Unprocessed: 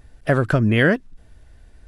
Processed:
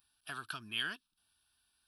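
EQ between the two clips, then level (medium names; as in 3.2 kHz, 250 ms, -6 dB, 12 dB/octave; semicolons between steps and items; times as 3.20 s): differentiator; dynamic bell 3.6 kHz, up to +4 dB, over -47 dBFS, Q 0.81; static phaser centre 2 kHz, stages 6; -1.5 dB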